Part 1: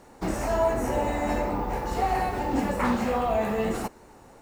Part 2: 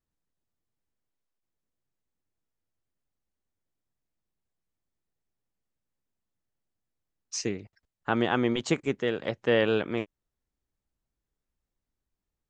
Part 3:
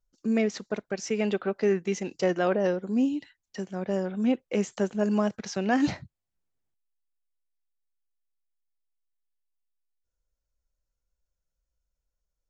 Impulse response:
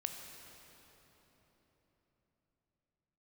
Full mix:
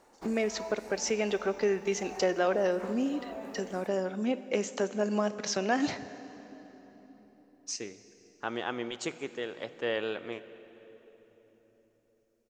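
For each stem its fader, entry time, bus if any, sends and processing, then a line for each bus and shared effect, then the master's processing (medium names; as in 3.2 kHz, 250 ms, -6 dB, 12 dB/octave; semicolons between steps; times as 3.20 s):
-8.0 dB, 0.00 s, bus A, send -21.5 dB, auto duck -11 dB, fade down 0.75 s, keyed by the third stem
-10.5 dB, 0.35 s, no bus, send -4.5 dB, none
+3.0 dB, 0.00 s, bus A, send -11.5 dB, none
bus A: 0.0 dB, treble shelf 6.7 kHz -9 dB; compression 2.5:1, threshold -29 dBFS, peak gain reduction 9 dB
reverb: on, RT60 4.1 s, pre-delay 14 ms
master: tone controls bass -11 dB, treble +5 dB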